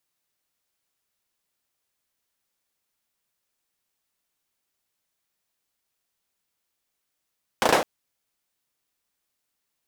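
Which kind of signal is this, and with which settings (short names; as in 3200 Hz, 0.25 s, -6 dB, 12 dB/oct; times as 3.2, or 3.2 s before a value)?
hand clap length 0.21 s, apart 35 ms, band 560 Hz, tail 0.39 s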